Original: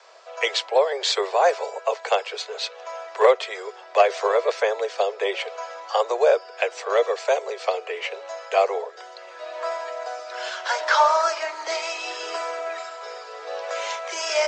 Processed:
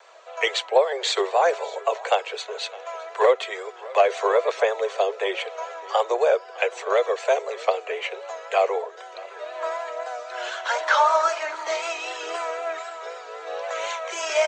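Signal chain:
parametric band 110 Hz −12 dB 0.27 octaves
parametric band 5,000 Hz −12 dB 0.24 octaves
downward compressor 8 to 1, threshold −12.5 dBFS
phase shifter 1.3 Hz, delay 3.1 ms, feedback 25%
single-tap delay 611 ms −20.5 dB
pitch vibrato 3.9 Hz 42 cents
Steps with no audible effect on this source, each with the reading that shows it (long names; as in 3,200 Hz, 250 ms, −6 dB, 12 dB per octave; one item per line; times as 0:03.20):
parametric band 110 Hz: nothing at its input below 340 Hz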